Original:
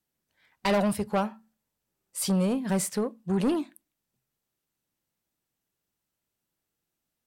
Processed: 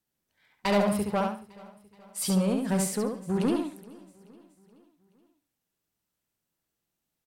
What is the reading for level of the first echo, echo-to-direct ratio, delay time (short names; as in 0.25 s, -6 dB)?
-4.0 dB, -3.5 dB, 69 ms